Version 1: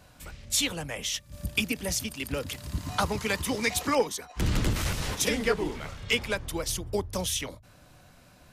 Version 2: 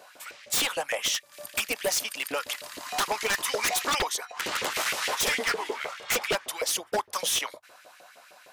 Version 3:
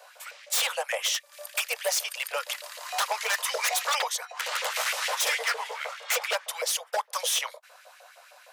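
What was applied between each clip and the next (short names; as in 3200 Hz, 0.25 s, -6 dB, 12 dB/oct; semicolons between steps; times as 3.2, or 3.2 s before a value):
LFO high-pass saw up 6.5 Hz 420–2500 Hz; wavefolder -23.5 dBFS; gain +4 dB
steep high-pass 470 Hz 96 dB/oct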